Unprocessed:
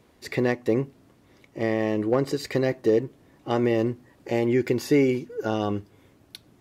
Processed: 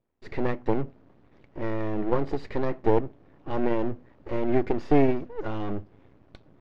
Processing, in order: added harmonics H 8 -23 dB, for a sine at -11 dBFS; half-wave rectifier; gate with hold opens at -49 dBFS; tape spacing loss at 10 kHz 34 dB; gain +5.5 dB

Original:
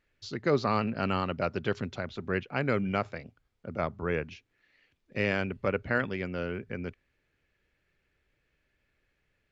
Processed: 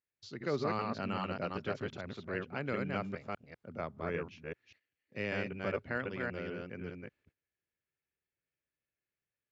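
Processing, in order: reverse delay 0.197 s, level -2 dB; gate -56 dBFS, range -13 dB; HPF 83 Hz; gain -8.5 dB

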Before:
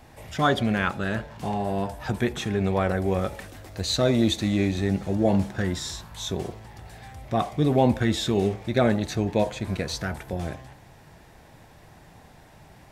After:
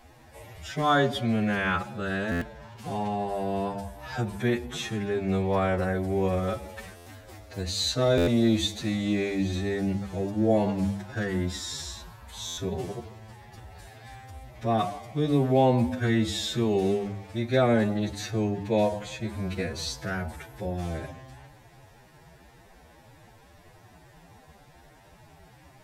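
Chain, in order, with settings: notches 50/100/150/200/250/300 Hz; time stretch by phase-locked vocoder 2×; stuck buffer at 2.31/6.96/8.17/12.47, samples 512; gain -1.5 dB

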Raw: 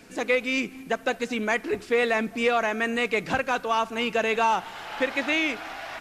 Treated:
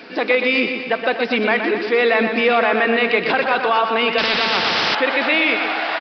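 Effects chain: HPF 310 Hz 12 dB/oct; in parallel at -1 dB: negative-ratio compressor -32 dBFS, ratio -1; on the sum: feedback echo 0.122 s, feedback 58%, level -7 dB; downsampling 11025 Hz; 4.18–4.95 spectral compressor 4:1; gain +5 dB

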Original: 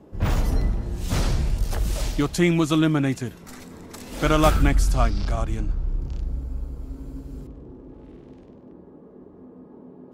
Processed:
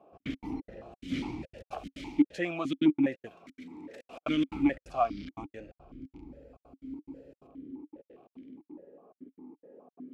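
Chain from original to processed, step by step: step gate "xx.x.xx.xxx.xxx" 176 bpm -60 dB; in parallel at -3.5 dB: soft clip -18.5 dBFS, distortion -12 dB; on the sum: vowel sequencer 4.9 Hz; gain +1 dB

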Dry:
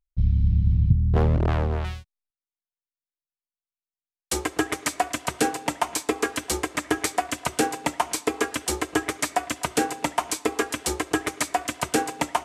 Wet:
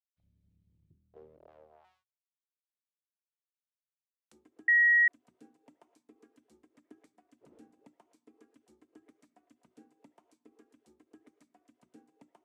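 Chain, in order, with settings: 7.4–7.85 wind noise 560 Hz -30 dBFS; pre-emphasis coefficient 0.9; notches 60/120/180/240 Hz; auto-wah 230–1600 Hz, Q 3.6, down, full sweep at -31.5 dBFS; 4.68–5.08 bleep 1900 Hz -14 dBFS; gain -5.5 dB

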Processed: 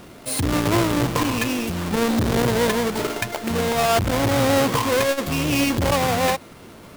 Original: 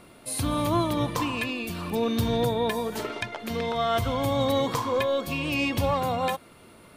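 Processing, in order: half-waves squared off; core saturation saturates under 220 Hz; gain +3.5 dB

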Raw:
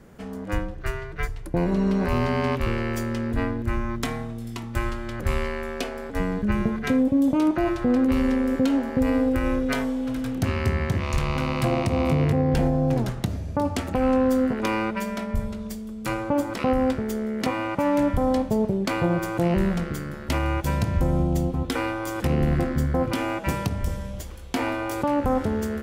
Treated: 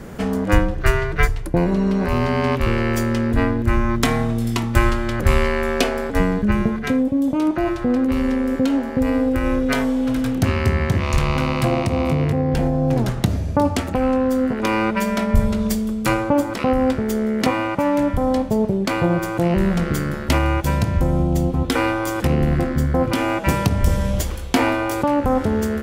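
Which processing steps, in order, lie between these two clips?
vocal rider 0.5 s; gain +5 dB

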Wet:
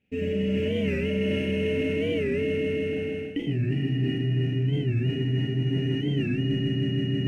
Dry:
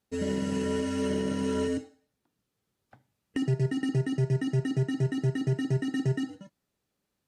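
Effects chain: median filter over 5 samples; multi-head echo 0.16 s, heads first and second, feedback 66%, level -7 dB; in parallel at -9.5 dB: hard clip -27 dBFS, distortion -10 dB; on the sum: EQ curve 260 Hz 0 dB, 560 Hz -6 dB, 1100 Hz -23 dB, 2600 Hz +8 dB, 4000 Hz -17 dB; Schroeder reverb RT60 1.4 s, combs from 32 ms, DRR -7 dB; reverse; compressor 12:1, threshold -30 dBFS, peak gain reduction 18.5 dB; reverse; record warp 45 rpm, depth 160 cents; gain +7.5 dB

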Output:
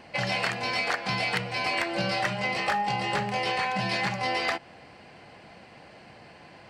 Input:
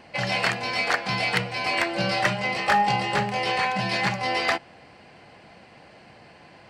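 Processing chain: compressor, threshold -24 dBFS, peak gain reduction 7.5 dB

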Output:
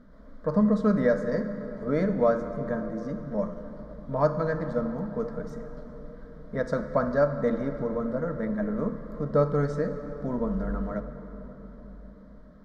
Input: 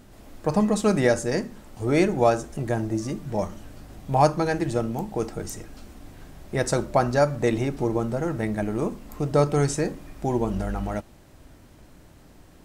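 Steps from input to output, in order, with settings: air absorption 320 m; fixed phaser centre 530 Hz, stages 8; reverb RT60 4.5 s, pre-delay 31 ms, DRR 8.5 dB

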